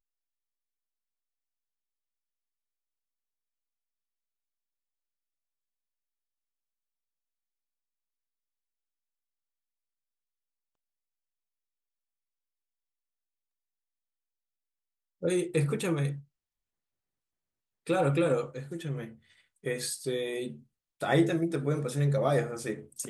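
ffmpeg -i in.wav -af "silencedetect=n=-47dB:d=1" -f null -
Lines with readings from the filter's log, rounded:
silence_start: 0.00
silence_end: 15.22 | silence_duration: 15.22
silence_start: 16.21
silence_end: 17.87 | silence_duration: 1.66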